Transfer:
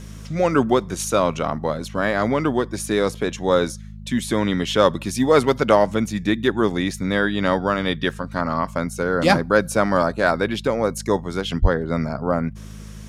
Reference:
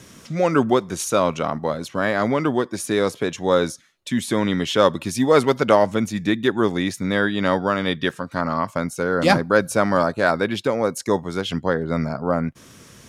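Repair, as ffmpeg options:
-filter_complex "[0:a]bandreject=f=52.5:t=h:w=4,bandreject=f=105:t=h:w=4,bandreject=f=157.5:t=h:w=4,bandreject=f=210:t=h:w=4,asplit=3[a][b][c];[a]afade=t=out:st=11.61:d=0.02[d];[b]highpass=f=140:w=0.5412,highpass=f=140:w=1.3066,afade=t=in:st=11.61:d=0.02,afade=t=out:st=11.73:d=0.02[e];[c]afade=t=in:st=11.73:d=0.02[f];[d][e][f]amix=inputs=3:normalize=0"

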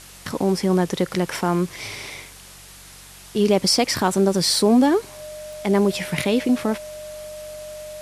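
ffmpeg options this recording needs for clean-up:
-af "adeclick=t=4,bandreject=f=46.9:t=h:w=4,bandreject=f=93.8:t=h:w=4,bandreject=f=140.7:t=h:w=4,bandreject=f=187.6:t=h:w=4,bandreject=f=610:w=30,afwtdn=0.0079"

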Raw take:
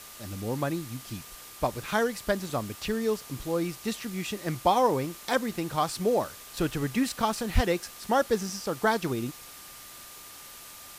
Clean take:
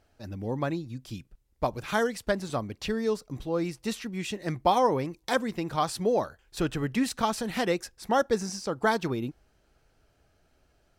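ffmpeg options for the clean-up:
-filter_complex "[0:a]bandreject=f=1.2k:w=30,asplit=3[a][b][c];[a]afade=t=out:st=7.54:d=0.02[d];[b]highpass=f=140:w=0.5412,highpass=f=140:w=1.3066,afade=t=in:st=7.54:d=0.02,afade=t=out:st=7.66:d=0.02[e];[c]afade=t=in:st=7.66:d=0.02[f];[d][e][f]amix=inputs=3:normalize=0,afwtdn=0.0056"

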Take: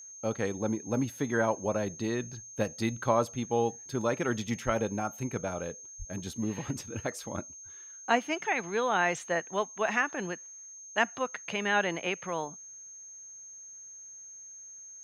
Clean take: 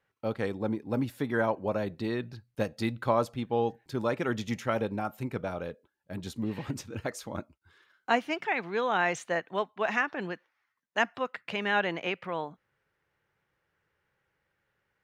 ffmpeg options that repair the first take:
-filter_complex "[0:a]bandreject=f=6.4k:w=30,asplit=3[a][b][c];[a]afade=t=out:st=4.65:d=0.02[d];[b]highpass=f=140:w=0.5412,highpass=f=140:w=1.3066,afade=t=in:st=4.65:d=0.02,afade=t=out:st=4.77:d=0.02[e];[c]afade=t=in:st=4.77:d=0.02[f];[d][e][f]amix=inputs=3:normalize=0,asplit=3[g][h][i];[g]afade=t=out:st=5.98:d=0.02[j];[h]highpass=f=140:w=0.5412,highpass=f=140:w=1.3066,afade=t=in:st=5.98:d=0.02,afade=t=out:st=6.1:d=0.02[k];[i]afade=t=in:st=6.1:d=0.02[l];[j][k][l]amix=inputs=3:normalize=0"

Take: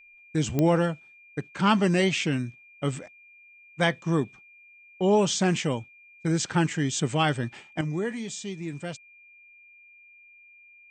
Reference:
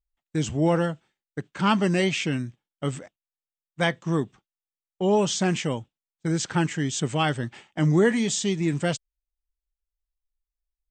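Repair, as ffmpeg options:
-af "adeclick=t=4,bandreject=f=2.4k:w=30,asetnsamples=n=441:p=0,asendcmd='7.81 volume volume 10dB',volume=0dB"

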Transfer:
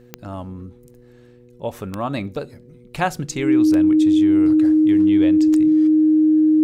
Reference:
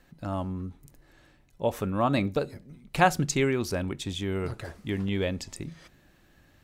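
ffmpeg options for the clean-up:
-af "adeclick=t=4,bandreject=f=121.9:t=h:w=4,bandreject=f=243.8:t=h:w=4,bandreject=f=365.7:t=h:w=4,bandreject=f=487.6:t=h:w=4,bandreject=f=310:w=30"

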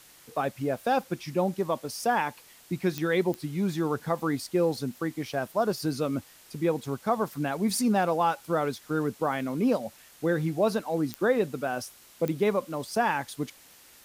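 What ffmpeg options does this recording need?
-af "adeclick=t=4,afftdn=nr=18:nf=-54"

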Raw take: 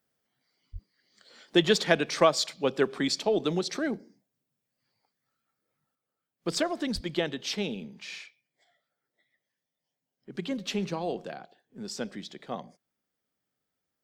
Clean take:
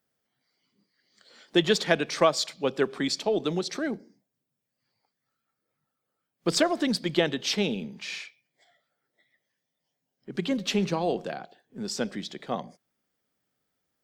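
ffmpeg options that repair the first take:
-filter_complex "[0:a]asplit=3[a][b][c];[a]afade=t=out:st=0.72:d=0.02[d];[b]highpass=f=140:w=0.5412,highpass=f=140:w=1.3066,afade=t=in:st=0.72:d=0.02,afade=t=out:st=0.84:d=0.02[e];[c]afade=t=in:st=0.84:d=0.02[f];[d][e][f]amix=inputs=3:normalize=0,asplit=3[g][h][i];[g]afade=t=out:st=6.94:d=0.02[j];[h]highpass=f=140:w=0.5412,highpass=f=140:w=1.3066,afade=t=in:st=6.94:d=0.02,afade=t=out:st=7.06:d=0.02[k];[i]afade=t=in:st=7.06:d=0.02[l];[j][k][l]amix=inputs=3:normalize=0,asetnsamples=n=441:p=0,asendcmd='5.95 volume volume 5dB',volume=0dB"

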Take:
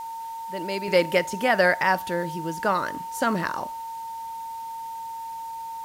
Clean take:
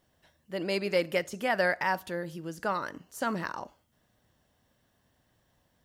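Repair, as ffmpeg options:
-af "bandreject=f=910:w=30,afwtdn=0.0028,asetnsamples=n=441:p=0,asendcmd='0.88 volume volume -7dB',volume=0dB"

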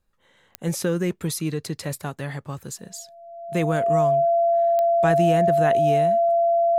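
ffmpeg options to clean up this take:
-af "adeclick=t=4,bandreject=f=680:w=30"

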